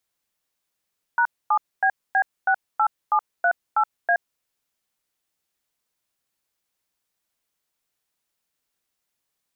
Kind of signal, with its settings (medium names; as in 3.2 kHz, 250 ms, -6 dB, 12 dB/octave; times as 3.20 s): DTMF "#7BB68738A", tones 73 ms, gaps 250 ms, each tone -18.5 dBFS